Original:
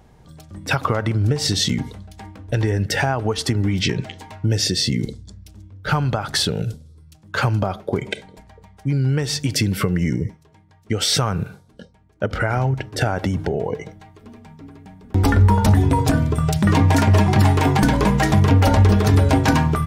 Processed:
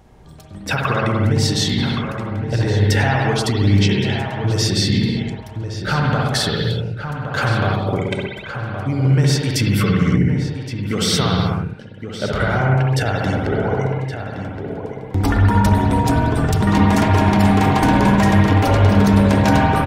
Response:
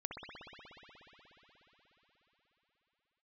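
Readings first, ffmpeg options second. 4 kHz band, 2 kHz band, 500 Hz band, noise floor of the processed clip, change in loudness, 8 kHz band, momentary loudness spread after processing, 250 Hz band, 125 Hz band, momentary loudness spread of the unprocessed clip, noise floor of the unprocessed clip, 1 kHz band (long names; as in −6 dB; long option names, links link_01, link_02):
+1.0 dB, +3.5 dB, +3.0 dB, −34 dBFS, +1.5 dB, −0.5 dB, 12 LU, +4.0 dB, +2.0 dB, 13 LU, −52 dBFS, +3.5 dB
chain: -filter_complex "[0:a]asplit=2[link_01][link_02];[link_02]alimiter=limit=-14.5dB:level=0:latency=1,volume=-2dB[link_03];[link_01][link_03]amix=inputs=2:normalize=0,asplit=2[link_04][link_05];[link_05]adelay=1119,lowpass=frequency=2400:poles=1,volume=-7.5dB,asplit=2[link_06][link_07];[link_07]adelay=1119,lowpass=frequency=2400:poles=1,volume=0.16,asplit=2[link_08][link_09];[link_09]adelay=1119,lowpass=frequency=2400:poles=1,volume=0.16[link_10];[link_04][link_06][link_08][link_10]amix=inputs=4:normalize=0[link_11];[1:a]atrim=start_sample=2205,afade=type=out:start_time=0.4:duration=0.01,atrim=end_sample=18081[link_12];[link_11][link_12]afir=irnorm=-1:irlink=0"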